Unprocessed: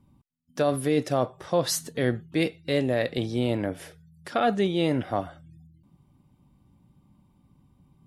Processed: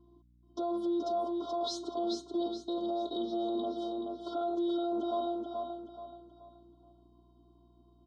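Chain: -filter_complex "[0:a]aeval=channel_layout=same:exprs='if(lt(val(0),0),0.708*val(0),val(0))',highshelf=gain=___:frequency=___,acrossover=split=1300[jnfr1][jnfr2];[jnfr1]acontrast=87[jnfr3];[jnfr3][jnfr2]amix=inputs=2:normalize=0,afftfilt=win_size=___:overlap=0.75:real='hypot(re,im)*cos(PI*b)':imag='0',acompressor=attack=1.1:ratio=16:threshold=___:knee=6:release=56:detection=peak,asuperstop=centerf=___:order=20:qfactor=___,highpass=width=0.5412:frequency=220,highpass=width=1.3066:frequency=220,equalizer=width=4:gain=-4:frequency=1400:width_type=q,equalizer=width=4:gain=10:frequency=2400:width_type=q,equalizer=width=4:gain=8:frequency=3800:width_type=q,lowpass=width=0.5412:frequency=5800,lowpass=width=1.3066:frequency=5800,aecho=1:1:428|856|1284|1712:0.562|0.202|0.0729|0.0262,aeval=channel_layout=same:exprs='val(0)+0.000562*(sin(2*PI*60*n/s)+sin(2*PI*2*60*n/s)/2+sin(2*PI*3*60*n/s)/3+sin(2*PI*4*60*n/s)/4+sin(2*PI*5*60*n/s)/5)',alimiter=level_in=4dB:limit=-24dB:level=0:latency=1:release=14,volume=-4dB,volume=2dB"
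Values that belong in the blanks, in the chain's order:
-7.5, 2300, 512, -26dB, 2100, 1.2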